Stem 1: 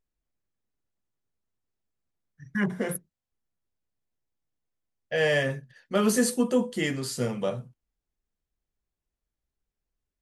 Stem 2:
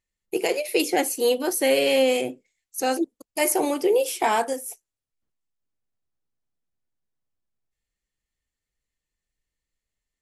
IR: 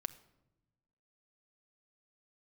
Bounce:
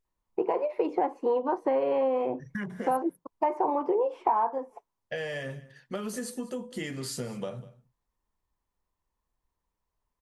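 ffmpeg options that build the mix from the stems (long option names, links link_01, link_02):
-filter_complex "[0:a]acompressor=threshold=-31dB:ratio=16,volume=0dB,asplit=2[link_01][link_02];[link_02]volume=-19.5dB[link_03];[1:a]lowpass=frequency=1000:width_type=q:width=7.5,adelay=50,volume=0.5dB[link_04];[link_03]aecho=0:1:197:1[link_05];[link_01][link_04][link_05]amix=inputs=3:normalize=0,acompressor=threshold=-24dB:ratio=5"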